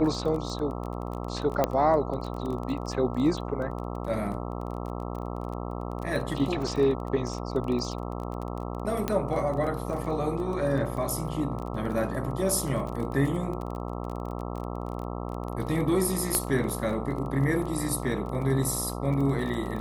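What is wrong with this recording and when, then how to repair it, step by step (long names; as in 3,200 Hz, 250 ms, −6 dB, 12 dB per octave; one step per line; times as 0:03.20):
mains buzz 60 Hz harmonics 22 −34 dBFS
surface crackle 23 per second −33 dBFS
0:01.64: click −10 dBFS
0:09.08: click −13 dBFS
0:16.35: click −10 dBFS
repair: click removal
hum removal 60 Hz, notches 22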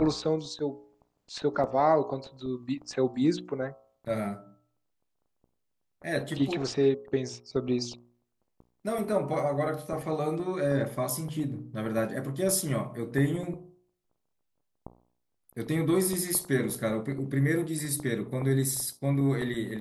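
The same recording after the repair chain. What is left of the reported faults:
0:01.64: click
0:09.08: click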